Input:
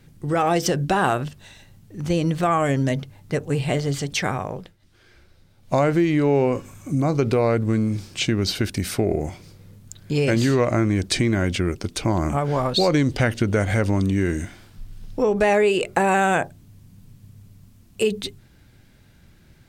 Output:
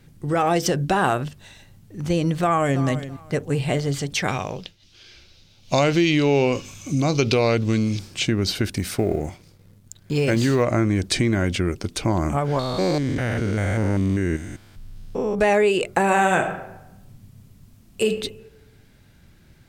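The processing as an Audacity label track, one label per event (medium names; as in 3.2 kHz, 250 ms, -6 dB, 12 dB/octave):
2.400000	2.830000	echo throw 330 ms, feedback 20%, level -13 dB
4.280000	7.990000	high-order bell 4 kHz +13.5 dB
8.780000	10.630000	companding laws mixed up coded by A
12.590000	15.390000	spectrogram pixelated in time every 200 ms
15.990000	18.060000	reverb throw, RT60 0.95 s, DRR 5 dB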